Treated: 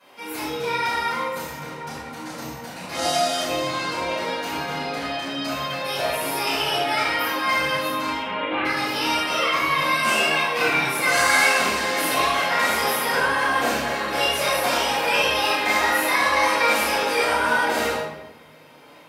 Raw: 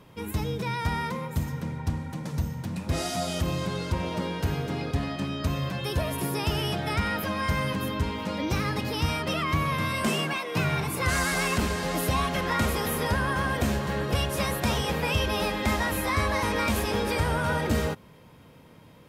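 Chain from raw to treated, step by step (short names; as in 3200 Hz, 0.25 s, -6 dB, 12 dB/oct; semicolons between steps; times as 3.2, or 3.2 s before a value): HPF 530 Hz 12 dB/oct; chorus voices 2, 0.66 Hz, delay 28 ms, depth 1.6 ms; 8.18–8.65 elliptic low-pass 3200 Hz, stop band 50 dB; shoebox room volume 340 m³, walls mixed, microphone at 8 m; gain -4 dB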